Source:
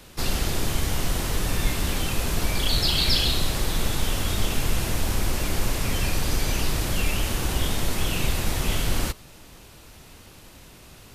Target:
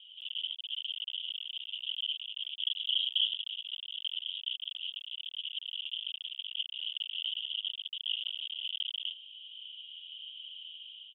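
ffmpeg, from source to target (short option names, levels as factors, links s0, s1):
-af "aecho=1:1:1.3:0.89,dynaudnorm=f=260:g=3:m=2.37,aresample=8000,volume=14.1,asoftclip=hard,volume=0.0708,aresample=44100,acrusher=bits=3:mode=log:mix=0:aa=0.000001,asoftclip=type=tanh:threshold=0.0708,asuperpass=centerf=3100:order=8:qfactor=4.6,volume=1.78"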